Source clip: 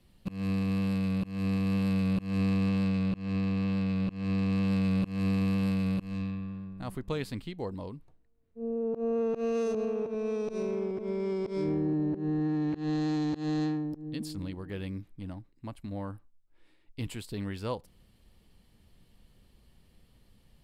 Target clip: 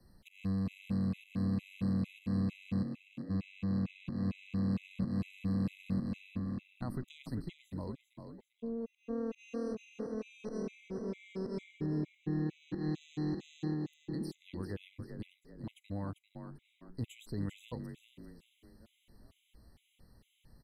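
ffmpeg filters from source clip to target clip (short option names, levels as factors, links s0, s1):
-filter_complex "[0:a]acrossover=split=240|1200[s0][s1][s2];[s0]acompressor=threshold=0.0282:ratio=4[s3];[s1]acompressor=threshold=0.00631:ratio=4[s4];[s2]acompressor=threshold=0.00251:ratio=4[s5];[s3][s4][s5]amix=inputs=3:normalize=0,asplit=3[s6][s7][s8];[s6]afade=t=out:st=2.82:d=0.02[s9];[s7]asplit=3[s10][s11][s12];[s10]bandpass=f=530:t=q:w=8,volume=1[s13];[s11]bandpass=f=1840:t=q:w=8,volume=0.501[s14];[s12]bandpass=f=2480:t=q:w=8,volume=0.355[s15];[s13][s14][s15]amix=inputs=3:normalize=0,afade=t=in:st=2.82:d=0.02,afade=t=out:st=3.29:d=0.02[s16];[s8]afade=t=in:st=3.29:d=0.02[s17];[s9][s16][s17]amix=inputs=3:normalize=0,asplit=2[s18][s19];[s19]asplit=5[s20][s21][s22][s23][s24];[s20]adelay=394,afreqshift=39,volume=0.398[s25];[s21]adelay=788,afreqshift=78,volume=0.158[s26];[s22]adelay=1182,afreqshift=117,volume=0.0638[s27];[s23]adelay=1576,afreqshift=156,volume=0.0254[s28];[s24]adelay=1970,afreqshift=195,volume=0.0102[s29];[s25][s26][s27][s28][s29]amix=inputs=5:normalize=0[s30];[s18][s30]amix=inputs=2:normalize=0,afftfilt=real='re*gt(sin(2*PI*2.2*pts/sr)*(1-2*mod(floor(b*sr/1024/2000),2)),0)':imag='im*gt(sin(2*PI*2.2*pts/sr)*(1-2*mod(floor(b*sr/1024/2000),2)),0)':win_size=1024:overlap=0.75"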